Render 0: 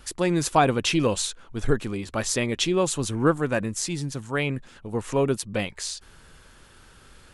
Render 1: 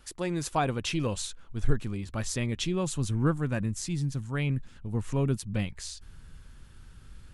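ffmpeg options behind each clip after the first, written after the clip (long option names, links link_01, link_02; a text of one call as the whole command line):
ffmpeg -i in.wav -af "asubboost=boost=5:cutoff=210,volume=-8dB" out.wav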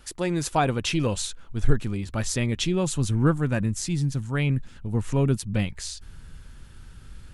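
ffmpeg -i in.wav -af "bandreject=frequency=1100:width=22,volume=5dB" out.wav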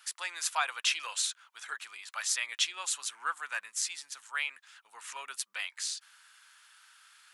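ffmpeg -i in.wav -af "highpass=frequency=1100:width=0.5412,highpass=frequency=1100:width=1.3066" out.wav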